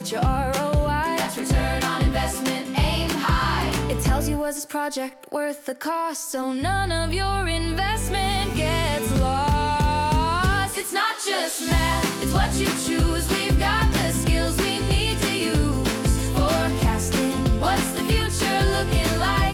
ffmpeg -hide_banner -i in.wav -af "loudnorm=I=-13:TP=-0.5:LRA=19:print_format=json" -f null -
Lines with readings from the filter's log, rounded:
"input_i" : "-22.5",
"input_tp" : "-8.9",
"input_lra" : "2.9",
"input_thresh" : "-32.5",